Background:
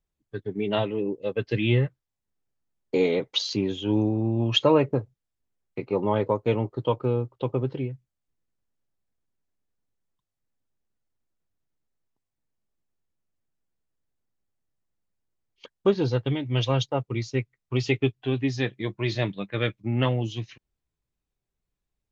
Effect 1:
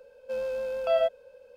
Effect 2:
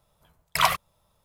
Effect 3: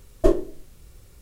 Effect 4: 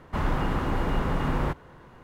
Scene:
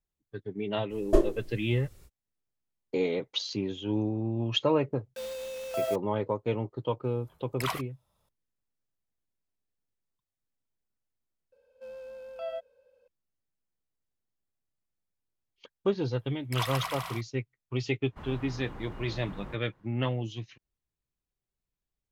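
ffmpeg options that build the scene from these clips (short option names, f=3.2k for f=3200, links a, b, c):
-filter_complex "[1:a]asplit=2[a][b];[2:a]asplit=2[c][d];[0:a]volume=-6dB[e];[a]acrusher=bits=5:mix=0:aa=0.000001[f];[c]acompressor=threshold=-23dB:ratio=2.5:attack=0.1:release=683:knee=1:detection=rms[g];[d]aecho=1:1:130|234|317.2|383.8|437|479.6|513.7|540.9:0.794|0.631|0.501|0.398|0.316|0.251|0.2|0.158[h];[e]asplit=2[i][j];[i]atrim=end=11.524[k];[b]atrim=end=1.56,asetpts=PTS-STARTPTS,volume=-12.5dB[l];[j]atrim=start=13.076[m];[3:a]atrim=end=1.21,asetpts=PTS-STARTPTS,volume=-4dB,afade=t=in:d=0.05,afade=t=out:st=1.16:d=0.05,adelay=890[n];[f]atrim=end=1.56,asetpts=PTS-STARTPTS,volume=-6.5dB,afade=t=in:d=0.004:c=hsin,afade=t=out:st=1.556:d=0.004:c=hsin,adelay=4870[o];[g]atrim=end=1.24,asetpts=PTS-STARTPTS,volume=-3dB,afade=t=in:d=0.004:c=hsin,afade=t=out:st=1.236:d=0.004:c=hsin,adelay=7050[p];[h]atrim=end=1.24,asetpts=PTS-STARTPTS,volume=-13.5dB,afade=t=in:d=0.004:c=hsin,afade=t=out:st=1.236:d=0.004:c=hsin,adelay=15970[q];[4:a]atrim=end=2.03,asetpts=PTS-STARTPTS,volume=-17dB,afade=t=in:d=0.004:c=hsin,afade=t=out:st=2.026:d=0.004:c=hsin,adelay=18030[r];[k][l]acrossfade=d=0.004:c1=hsin:c2=hsin[s];[s][m]acrossfade=d=0.004:c1=hsin:c2=hsin[t];[t][n][o][p][q][r]amix=inputs=6:normalize=0"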